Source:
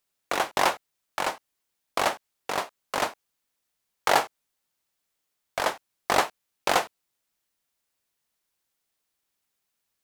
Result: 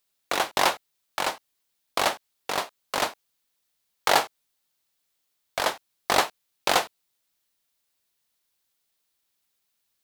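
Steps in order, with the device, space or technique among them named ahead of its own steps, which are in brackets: presence and air boost (bell 3900 Hz +4.5 dB 0.94 oct; high shelf 9700 Hz +5.5 dB)

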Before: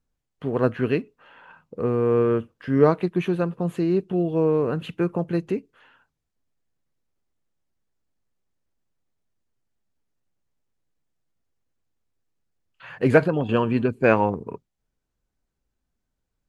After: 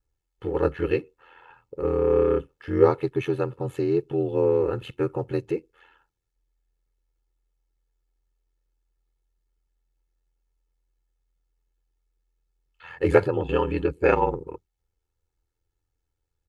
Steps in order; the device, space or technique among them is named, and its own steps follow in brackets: ring-modulated robot voice (ring modulator 42 Hz; comb 2.3 ms, depth 78%); gain -1 dB

